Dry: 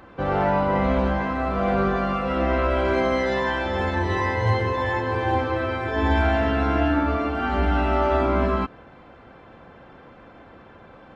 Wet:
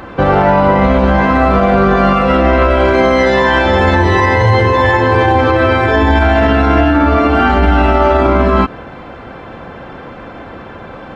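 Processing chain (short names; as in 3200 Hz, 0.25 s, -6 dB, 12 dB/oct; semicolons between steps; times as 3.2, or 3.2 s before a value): maximiser +17.5 dB; gain -1 dB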